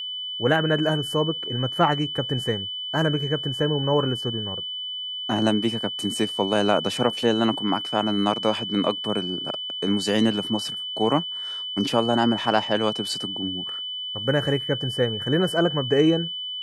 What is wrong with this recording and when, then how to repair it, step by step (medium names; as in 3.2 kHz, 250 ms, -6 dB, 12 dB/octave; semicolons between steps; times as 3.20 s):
whine 3 kHz -29 dBFS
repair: band-stop 3 kHz, Q 30